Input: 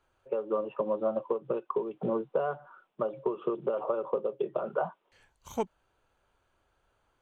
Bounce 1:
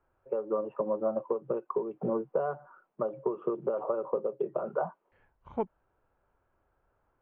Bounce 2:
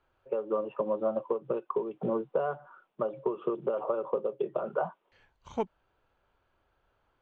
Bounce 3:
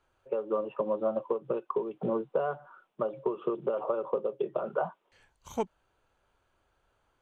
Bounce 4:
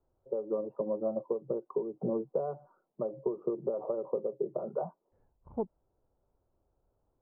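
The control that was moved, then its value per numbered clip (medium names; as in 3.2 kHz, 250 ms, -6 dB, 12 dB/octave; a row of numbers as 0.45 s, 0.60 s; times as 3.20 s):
Bessel low-pass, frequency: 1.4 kHz, 3.7 kHz, 12 kHz, 550 Hz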